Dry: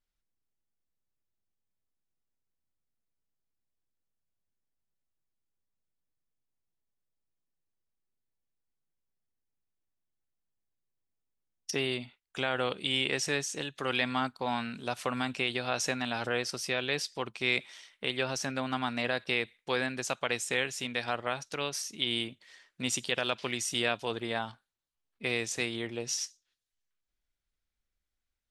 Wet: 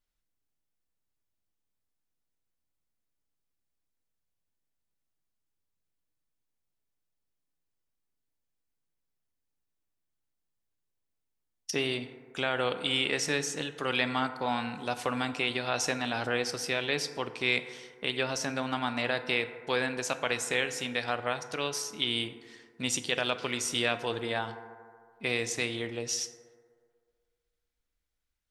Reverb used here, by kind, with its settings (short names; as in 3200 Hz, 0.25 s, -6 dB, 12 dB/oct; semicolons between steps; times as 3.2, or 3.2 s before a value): FDN reverb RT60 2 s, low-frequency decay 0.75×, high-frequency decay 0.3×, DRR 9.5 dB; gain +1 dB